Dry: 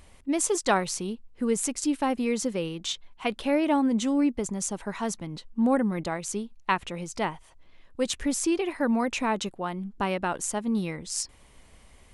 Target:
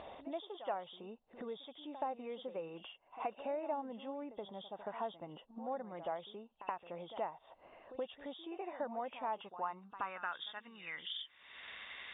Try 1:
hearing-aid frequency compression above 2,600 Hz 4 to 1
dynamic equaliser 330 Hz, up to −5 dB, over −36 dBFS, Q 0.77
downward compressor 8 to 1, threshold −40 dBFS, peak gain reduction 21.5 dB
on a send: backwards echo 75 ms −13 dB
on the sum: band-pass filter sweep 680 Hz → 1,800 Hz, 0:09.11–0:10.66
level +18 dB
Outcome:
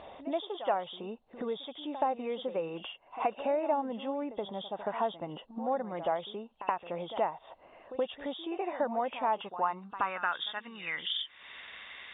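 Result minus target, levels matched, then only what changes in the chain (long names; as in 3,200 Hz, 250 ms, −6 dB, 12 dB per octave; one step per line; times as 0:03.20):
downward compressor: peak gain reduction −9 dB
change: downward compressor 8 to 1, threshold −50.5 dBFS, peak gain reduction 31 dB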